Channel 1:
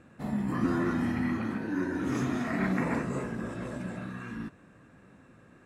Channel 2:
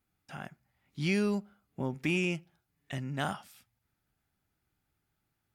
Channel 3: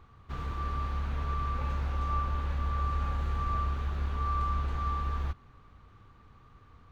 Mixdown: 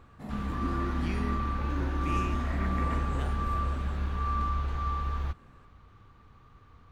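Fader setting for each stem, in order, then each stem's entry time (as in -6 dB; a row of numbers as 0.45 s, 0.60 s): -6.5 dB, -10.0 dB, +0.5 dB; 0.00 s, 0.00 s, 0.00 s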